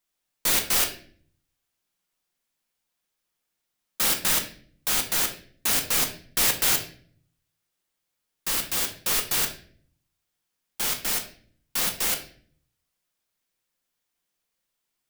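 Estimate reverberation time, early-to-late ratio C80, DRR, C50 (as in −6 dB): 0.50 s, 13.0 dB, 3.0 dB, 10.0 dB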